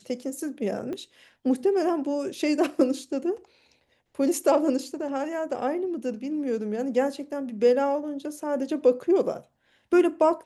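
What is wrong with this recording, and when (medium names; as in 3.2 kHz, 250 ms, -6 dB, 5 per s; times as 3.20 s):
0.93 s: pop -23 dBFS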